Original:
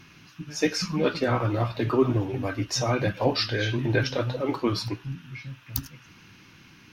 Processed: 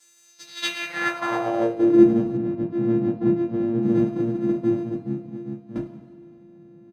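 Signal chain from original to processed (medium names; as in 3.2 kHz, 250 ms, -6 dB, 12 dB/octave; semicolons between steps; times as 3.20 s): sorted samples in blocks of 128 samples; comb 6.3 ms, depth 45%; two-slope reverb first 0.21 s, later 1.8 s, from -18 dB, DRR -6.5 dB; band-pass sweep 7.4 kHz -> 220 Hz, 0.23–2.13 s; 2.37–3.83 s: distance through air 160 m; trim +2.5 dB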